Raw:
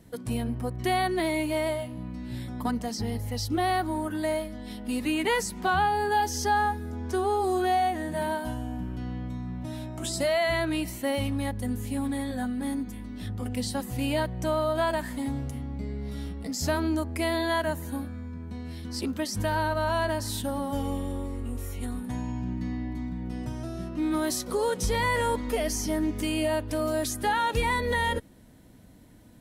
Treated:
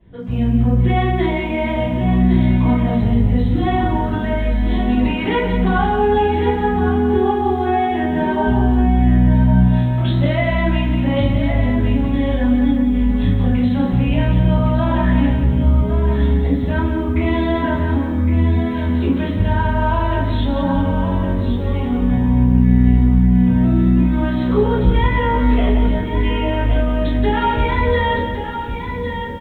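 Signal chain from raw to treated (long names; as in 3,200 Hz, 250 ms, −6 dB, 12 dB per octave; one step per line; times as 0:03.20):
high-pass filter 100 Hz 6 dB per octave
low-shelf EQ 220 Hz +10.5 dB
automatic gain control gain up to 14.5 dB
brickwall limiter −9 dBFS, peak gain reduction 7.5 dB
downward compressor 16 to 1, threshold −17 dBFS, peak gain reduction 6 dB
notch comb filter 150 Hz
single-tap delay 1,112 ms −8 dB
rectangular room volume 58 cubic metres, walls mixed, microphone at 3.1 metres
downsampling to 8,000 Hz
feedback echo at a low word length 178 ms, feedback 35%, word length 7 bits, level −8 dB
level −10.5 dB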